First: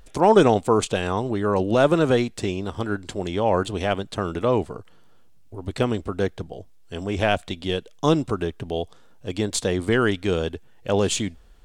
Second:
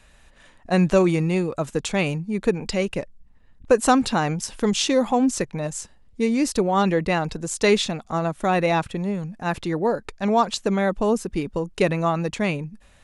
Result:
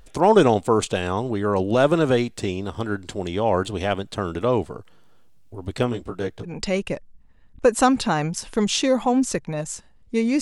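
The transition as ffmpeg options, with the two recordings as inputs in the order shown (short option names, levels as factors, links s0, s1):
-filter_complex "[0:a]asplit=3[s0][s1][s2];[s0]afade=t=out:st=5.83:d=0.02[s3];[s1]flanger=delay=16:depth=7.2:speed=0.18,afade=t=in:st=5.83:d=0.02,afade=t=out:st=6.55:d=0.02[s4];[s2]afade=t=in:st=6.55:d=0.02[s5];[s3][s4][s5]amix=inputs=3:normalize=0,apad=whole_dur=10.41,atrim=end=10.41,atrim=end=6.55,asetpts=PTS-STARTPTS[s6];[1:a]atrim=start=2.49:end=6.47,asetpts=PTS-STARTPTS[s7];[s6][s7]acrossfade=d=0.12:c1=tri:c2=tri"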